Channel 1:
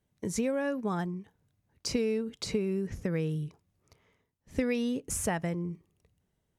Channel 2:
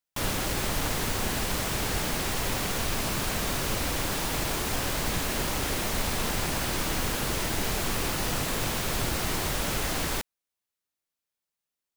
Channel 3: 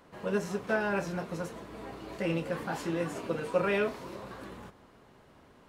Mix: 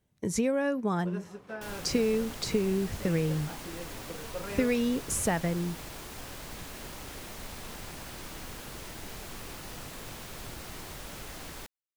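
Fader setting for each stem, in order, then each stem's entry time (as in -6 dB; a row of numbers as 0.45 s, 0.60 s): +2.5 dB, -13.5 dB, -11.0 dB; 0.00 s, 1.45 s, 0.80 s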